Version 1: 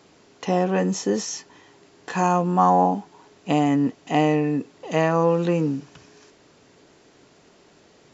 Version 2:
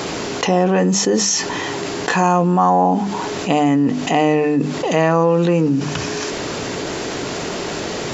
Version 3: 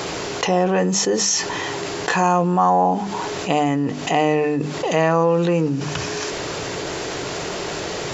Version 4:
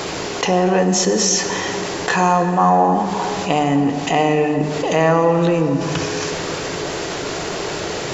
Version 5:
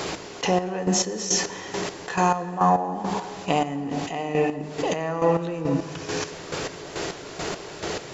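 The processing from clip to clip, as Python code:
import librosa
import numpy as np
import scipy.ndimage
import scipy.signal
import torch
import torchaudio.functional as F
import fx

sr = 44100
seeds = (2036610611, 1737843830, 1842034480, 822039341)

y1 = fx.hum_notches(x, sr, base_hz=50, count=6)
y1 = fx.env_flatten(y1, sr, amount_pct=70)
y1 = y1 * 10.0 ** (2.0 / 20.0)
y2 = fx.peak_eq(y1, sr, hz=240.0, db=-9.0, octaves=0.5)
y2 = y2 * 10.0 ** (-1.5 / 20.0)
y3 = fx.dmg_noise_colour(y2, sr, seeds[0], colour='brown', level_db=-56.0)
y3 = fx.rev_plate(y3, sr, seeds[1], rt60_s=3.9, hf_ratio=0.55, predelay_ms=0, drr_db=6.5)
y3 = y3 * 10.0 ** (1.5 / 20.0)
y4 = fx.chopper(y3, sr, hz=2.3, depth_pct=65, duty_pct=35)
y4 = y4 * 10.0 ** (-4.5 / 20.0)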